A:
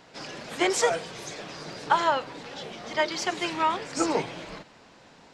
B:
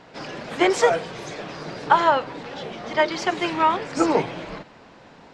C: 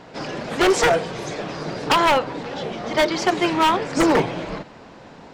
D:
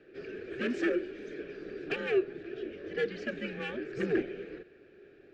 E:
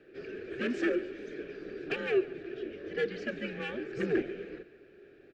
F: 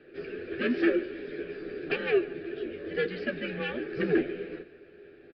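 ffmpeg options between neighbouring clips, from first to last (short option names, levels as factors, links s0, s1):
-af "lowpass=f=2300:p=1,volume=2.11"
-af "equalizer=f=2400:w=0.44:g=-3.5,aeval=exprs='0.15*(abs(mod(val(0)/0.15+3,4)-2)-1)':c=same,volume=2"
-filter_complex "[0:a]asplit=3[s0][s1][s2];[s0]bandpass=f=530:t=q:w=8,volume=1[s3];[s1]bandpass=f=1840:t=q:w=8,volume=0.501[s4];[s2]bandpass=f=2480:t=q:w=8,volume=0.355[s5];[s3][s4][s5]amix=inputs=3:normalize=0,afreqshift=-140,volume=0.708"
-af "aecho=1:1:142|284|426|568:0.119|0.0582|0.0285|0.014"
-filter_complex "[0:a]asplit=2[s0][s1];[s1]adelay=12,volume=0.473[s2];[s0][s2]amix=inputs=2:normalize=0,aresample=11025,aresample=44100,volume=1.41"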